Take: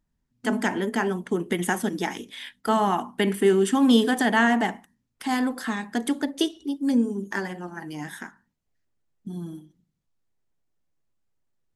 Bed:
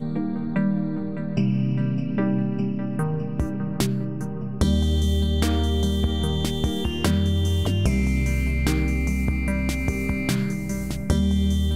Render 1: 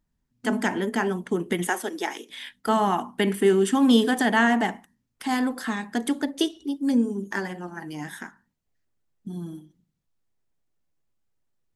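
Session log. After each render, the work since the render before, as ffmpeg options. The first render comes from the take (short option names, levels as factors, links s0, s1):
-filter_complex "[0:a]asettb=1/sr,asplit=3[s0][s1][s2];[s0]atrim=end=1.674[s3];[s1]atrim=start=1.67:end=2.3,asetpts=PTS-STARTPTS,afade=t=in:d=0.004:c=qsin,afade=t=out:st=0.626:d=0.004:c=qsin,highpass=f=320:w=0.5412,highpass=f=320:w=1.3066[s4];[s2]atrim=start=2.296[s5];[s3][s4]acrossfade=d=0.004:c1=hsin:c2=qsin[s6];[s6][s5]acrossfade=d=0.004:c1=qsin:c2=hsin"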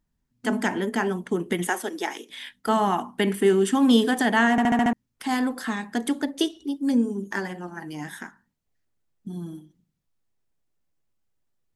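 -filter_complex "[0:a]asplit=7[s0][s1][s2][s3][s4][s5][s6];[s0]atrim=end=4.582[s7];[s1]atrim=start=4.508:end=4.582[s8];[s2]atrim=start=4.508:end=4.582[s9];[s3]atrim=start=4.508:end=4.582[s10];[s4]atrim=start=4.508:end=4.582[s11];[s5]atrim=start=4.508:end=4.582[s12];[s6]atrim=start=4.928[s13];[s7][s8]acrossfade=d=0.004:c1=hsin:c2=hsin[s14];[s14][s9]acrossfade=d=0.004:c1=hsin:c2=hsin[s15];[s15][s10]acrossfade=d=0.004:c1=hsin:c2=hsin[s16];[s16][s11]acrossfade=d=0.004:c1=hsin:c2=hsin[s17];[s17][s12]acrossfade=d=0.004:c1=hsin:c2=hsin[s18];[s18][s13]acrossfade=d=0.004:c1=hsin:c2=hsin"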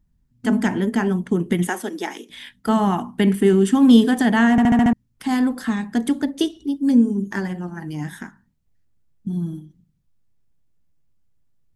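-af "bass=f=250:g=13,treble=f=4000:g=0"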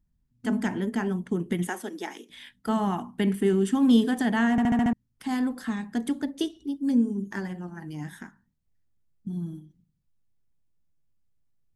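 -af "volume=0.422"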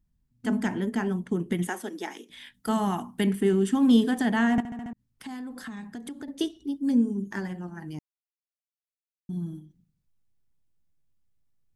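-filter_complex "[0:a]asettb=1/sr,asplit=3[s0][s1][s2];[s0]atrim=end=2.544[s3];[s1]atrim=start=2.54:end=3.27,asetpts=PTS-STARTPTS,afade=t=in:d=0.004:c=qsin,afade=t=out:st=0.726:d=0.004:c=qsin,aemphasis=mode=production:type=cd[s4];[s2]atrim=start=3.266[s5];[s3][s4]acrossfade=d=0.004:c1=hsin:c2=qsin[s6];[s6][s5]acrossfade=d=0.004:c1=qsin:c2=hsin,asettb=1/sr,asplit=3[s7][s8][s9];[s7]atrim=end=4.604[s10];[s8]atrim=start=4.6:end=6.28,asetpts=PTS-STARTPTS,afade=t=in:d=0.004:c=qsin,afade=t=out:st=1.676:d=0.004:c=qsin,acompressor=threshold=0.0178:ratio=6:attack=3.2:release=140:knee=1:detection=peak[s11];[s9]atrim=start=6.276[s12];[s10][s11]acrossfade=d=0.004:c1=hsin:c2=qsin[s13];[s13][s12]acrossfade=d=0.004:c1=qsin:c2=hsin,asplit=3[s14][s15][s16];[s14]atrim=end=7.99,asetpts=PTS-STARTPTS,afade=t=out:st=7.986:d=0.004:c=hsin[s17];[s15]atrim=start=7.99:end=9.29,asetpts=PTS-STARTPTS,volume=0[s18];[s16]atrim=start=9.29,asetpts=PTS-STARTPTS,afade=t=in:d=0.004:c=hsin[s19];[s17][s18][s19]concat=n=3:v=0:a=1"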